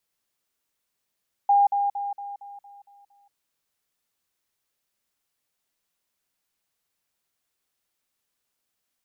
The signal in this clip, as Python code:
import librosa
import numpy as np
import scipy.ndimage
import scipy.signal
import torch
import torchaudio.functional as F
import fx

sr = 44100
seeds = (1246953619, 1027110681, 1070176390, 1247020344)

y = fx.level_ladder(sr, hz=807.0, from_db=-14.5, step_db=-6.0, steps=8, dwell_s=0.18, gap_s=0.05)